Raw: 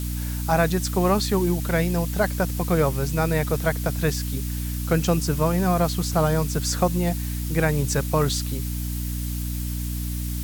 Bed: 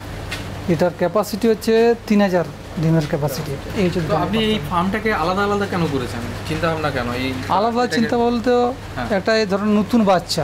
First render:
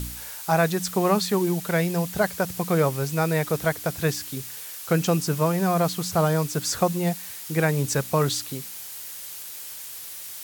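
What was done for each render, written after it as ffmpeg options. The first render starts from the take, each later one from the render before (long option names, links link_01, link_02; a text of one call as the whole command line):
ffmpeg -i in.wav -af "bandreject=frequency=60:width_type=h:width=4,bandreject=frequency=120:width_type=h:width=4,bandreject=frequency=180:width_type=h:width=4,bandreject=frequency=240:width_type=h:width=4,bandreject=frequency=300:width_type=h:width=4" out.wav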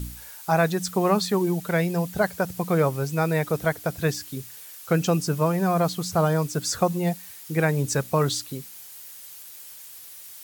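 ffmpeg -i in.wav -af "afftdn=noise_reduction=7:noise_floor=-38" out.wav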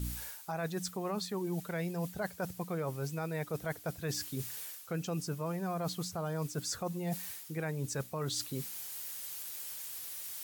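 ffmpeg -i in.wav -af "alimiter=limit=-14dB:level=0:latency=1:release=192,areverse,acompressor=threshold=-34dB:ratio=6,areverse" out.wav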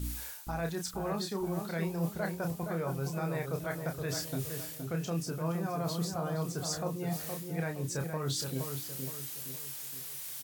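ffmpeg -i in.wav -filter_complex "[0:a]asplit=2[link_01][link_02];[link_02]adelay=30,volume=-5.5dB[link_03];[link_01][link_03]amix=inputs=2:normalize=0,asplit=2[link_04][link_05];[link_05]adelay=468,lowpass=frequency=1600:poles=1,volume=-5dB,asplit=2[link_06][link_07];[link_07]adelay=468,lowpass=frequency=1600:poles=1,volume=0.45,asplit=2[link_08][link_09];[link_09]adelay=468,lowpass=frequency=1600:poles=1,volume=0.45,asplit=2[link_10][link_11];[link_11]adelay=468,lowpass=frequency=1600:poles=1,volume=0.45,asplit=2[link_12][link_13];[link_13]adelay=468,lowpass=frequency=1600:poles=1,volume=0.45,asplit=2[link_14][link_15];[link_15]adelay=468,lowpass=frequency=1600:poles=1,volume=0.45[link_16];[link_06][link_08][link_10][link_12][link_14][link_16]amix=inputs=6:normalize=0[link_17];[link_04][link_17]amix=inputs=2:normalize=0" out.wav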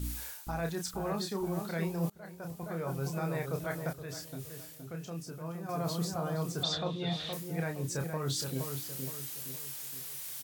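ffmpeg -i in.wav -filter_complex "[0:a]asettb=1/sr,asplit=3[link_01][link_02][link_03];[link_01]atrim=end=6.634[link_04];[link_02]atrim=start=6.63:end=7.33,asetpts=PTS-STARTPTS,afade=type=in:duration=0.004:curve=qsin,afade=type=out:start_time=0.696:duration=0.004:curve=qsin,lowpass=frequency=3600:width_type=q:width=13[link_05];[link_03]atrim=start=7.326[link_06];[link_04][link_05]acrossfade=duration=0.004:curve1=hsin:curve2=qsin[link_07];[link_07][link_06]acrossfade=duration=0.004:curve1=qsin:curve2=hsin,asplit=4[link_08][link_09][link_10][link_11];[link_08]atrim=end=2.1,asetpts=PTS-STARTPTS,afade=type=out:start_time=2.096:duration=0.004:curve=hsin:silence=0.0668344[link_12];[link_09]atrim=start=2.1:end=3.932,asetpts=PTS-STARTPTS,afade=type=in:duration=0.93:silence=0.0668344[link_13];[link_10]atrim=start=3.928:end=5.692,asetpts=PTS-STARTPTS,volume=-7dB[link_14];[link_11]atrim=start=5.688[link_15];[link_12][link_13]concat=n=2:v=0:a=1[link_16];[link_16][link_14]acrossfade=duration=0.004:curve1=hsin:curve2=hsin[link_17];[link_17][link_15]acrossfade=duration=0.004:curve1=hsin:curve2=hsin" out.wav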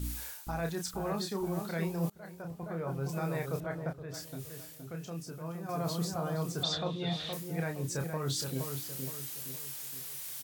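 ffmpeg -i in.wav -filter_complex "[0:a]asettb=1/sr,asplit=3[link_01][link_02][link_03];[link_01]atrim=end=2.424[link_04];[link_02]atrim=start=2.42:end=3.09,asetpts=PTS-STARTPTS,afade=type=in:duration=0.004:curve=qsin,afade=type=out:start_time=0.666:duration=0.004:curve=qsin,highshelf=frequency=3700:gain=-11[link_05];[link_03]atrim=start=3.086[link_06];[link_04][link_05]acrossfade=duration=0.004:curve1=hsin:curve2=qsin[link_07];[link_07][link_06]acrossfade=duration=0.004:curve1=qsin:curve2=hsin,asettb=1/sr,asplit=3[link_08][link_09][link_10];[link_08]atrim=end=3.604[link_11];[link_09]atrim=start=3.6:end=4.14,asetpts=PTS-STARTPTS,afade=type=in:duration=0.004:curve=qsin,afade=type=out:start_time=0.536:duration=0.004:curve=qsin,lowpass=frequency=1400:poles=1[link_12];[link_10]atrim=start=4.136[link_13];[link_11][link_12]acrossfade=duration=0.004:curve1=hsin:curve2=qsin[link_14];[link_14][link_13]acrossfade=duration=0.004:curve1=qsin:curve2=hsin" out.wav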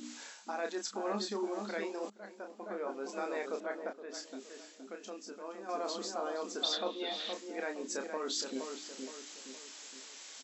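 ffmpeg -i in.wav -af "afftfilt=real='re*between(b*sr/4096,200,7800)':imag='im*between(b*sr/4096,200,7800)':win_size=4096:overlap=0.75" out.wav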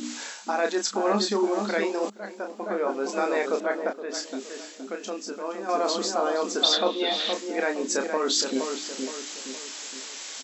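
ffmpeg -i in.wav -af "volume=12dB" out.wav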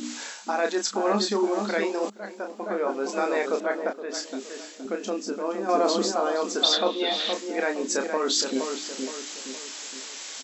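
ffmpeg -i in.wav -filter_complex "[0:a]asettb=1/sr,asplit=3[link_01][link_02][link_03];[link_01]atrim=end=4.854[link_04];[link_02]atrim=start=4.85:end=6.12,asetpts=PTS-STARTPTS,afade=type=in:duration=0.004:curve=qsin,afade=type=out:start_time=1.266:duration=0.004:curve=qsin,lowshelf=frequency=490:gain=8[link_05];[link_03]atrim=start=6.116[link_06];[link_04][link_05]acrossfade=duration=0.004:curve1=hsin:curve2=qsin[link_07];[link_07][link_06]acrossfade=duration=0.004:curve1=qsin:curve2=hsin" out.wav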